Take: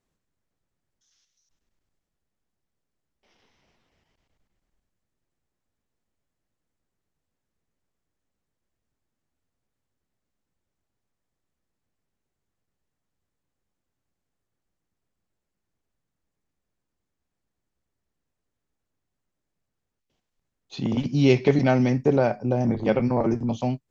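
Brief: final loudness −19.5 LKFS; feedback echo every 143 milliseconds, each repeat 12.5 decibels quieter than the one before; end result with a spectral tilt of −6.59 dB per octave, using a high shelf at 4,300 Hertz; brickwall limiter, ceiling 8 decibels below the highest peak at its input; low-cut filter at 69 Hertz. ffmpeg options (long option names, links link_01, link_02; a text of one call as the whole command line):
ffmpeg -i in.wav -af "highpass=69,highshelf=frequency=4300:gain=7.5,alimiter=limit=-13.5dB:level=0:latency=1,aecho=1:1:143|286|429:0.237|0.0569|0.0137,volume=4.5dB" out.wav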